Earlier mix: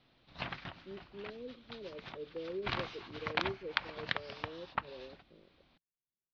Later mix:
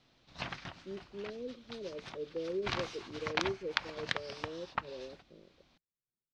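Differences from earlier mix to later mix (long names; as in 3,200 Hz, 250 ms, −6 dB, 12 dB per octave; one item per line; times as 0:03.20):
speech +4.0 dB
master: remove low-pass filter 4,300 Hz 24 dB per octave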